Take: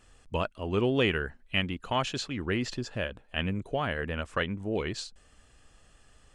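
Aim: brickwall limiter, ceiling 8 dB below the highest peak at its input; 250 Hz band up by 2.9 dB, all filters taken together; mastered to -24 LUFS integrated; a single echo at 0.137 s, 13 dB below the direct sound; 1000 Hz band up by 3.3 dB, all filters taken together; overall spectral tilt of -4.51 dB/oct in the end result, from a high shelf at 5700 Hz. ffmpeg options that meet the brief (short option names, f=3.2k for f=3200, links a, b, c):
-af "equalizer=f=250:t=o:g=3.5,equalizer=f=1k:t=o:g=4,highshelf=f=5.7k:g=-3.5,alimiter=limit=-20dB:level=0:latency=1,aecho=1:1:137:0.224,volume=8dB"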